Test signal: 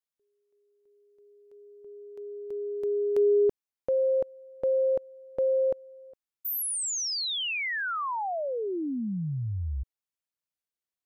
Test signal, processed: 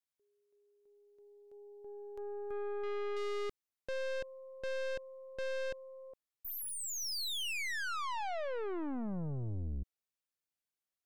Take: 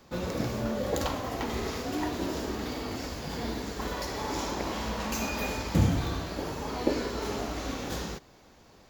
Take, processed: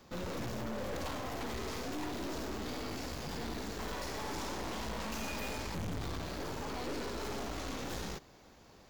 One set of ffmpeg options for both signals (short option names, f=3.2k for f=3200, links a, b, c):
-filter_complex "[0:a]acrossover=split=4800[a][b];[b]acompressor=threshold=-39dB:ratio=4:attack=1:release=60[c];[a][c]amix=inputs=2:normalize=0,aeval=exprs='(tanh(79.4*val(0)+0.65)-tanh(0.65))/79.4':c=same,volume=1dB"